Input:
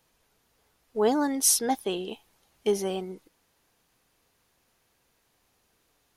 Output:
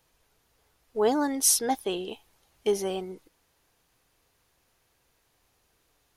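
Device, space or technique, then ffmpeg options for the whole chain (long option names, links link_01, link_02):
low shelf boost with a cut just above: -af "lowshelf=frequency=110:gain=4.5,equalizer=frequency=210:width_type=o:width=0.59:gain=-5"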